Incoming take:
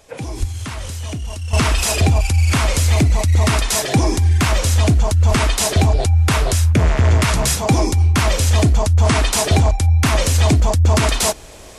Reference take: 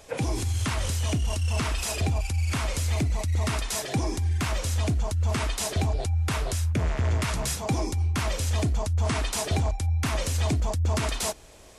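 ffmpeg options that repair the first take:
-filter_complex "[0:a]asplit=3[s0][s1][s2];[s0]afade=t=out:st=0.39:d=0.02[s3];[s1]highpass=f=140:w=0.5412,highpass=f=140:w=1.3066,afade=t=in:st=0.39:d=0.02,afade=t=out:st=0.51:d=0.02[s4];[s2]afade=t=in:st=0.51:d=0.02[s5];[s3][s4][s5]amix=inputs=3:normalize=0,asplit=3[s6][s7][s8];[s6]afade=t=out:st=5.29:d=0.02[s9];[s7]highpass=f=140:w=0.5412,highpass=f=140:w=1.3066,afade=t=in:st=5.29:d=0.02,afade=t=out:st=5.41:d=0.02[s10];[s8]afade=t=in:st=5.41:d=0.02[s11];[s9][s10][s11]amix=inputs=3:normalize=0,asetnsamples=n=441:p=0,asendcmd='1.53 volume volume -11.5dB',volume=1"

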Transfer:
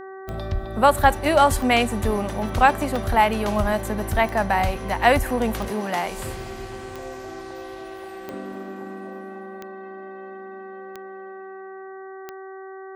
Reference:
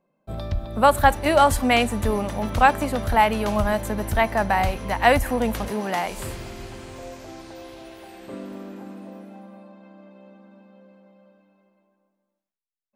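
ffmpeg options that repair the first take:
-af "adeclick=t=4,bandreject=f=382.9:t=h:w=4,bandreject=f=765.8:t=h:w=4,bandreject=f=1148.7:t=h:w=4,bandreject=f=1531.6:t=h:w=4,bandreject=f=1914.5:t=h:w=4"

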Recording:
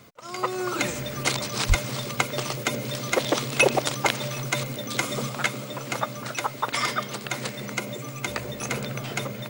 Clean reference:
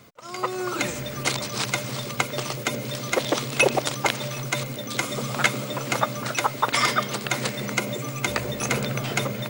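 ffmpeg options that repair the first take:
-filter_complex "[0:a]asplit=3[s0][s1][s2];[s0]afade=t=out:st=1.68:d=0.02[s3];[s1]highpass=f=140:w=0.5412,highpass=f=140:w=1.3066,afade=t=in:st=1.68:d=0.02,afade=t=out:st=1.8:d=0.02[s4];[s2]afade=t=in:st=1.8:d=0.02[s5];[s3][s4][s5]amix=inputs=3:normalize=0,asetnsamples=n=441:p=0,asendcmd='5.29 volume volume 4.5dB',volume=1"

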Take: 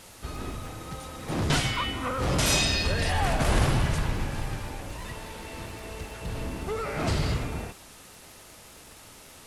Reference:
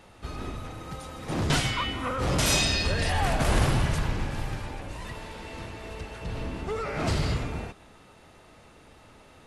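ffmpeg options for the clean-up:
-af "adeclick=t=4,afftdn=nr=6:nf=-49"

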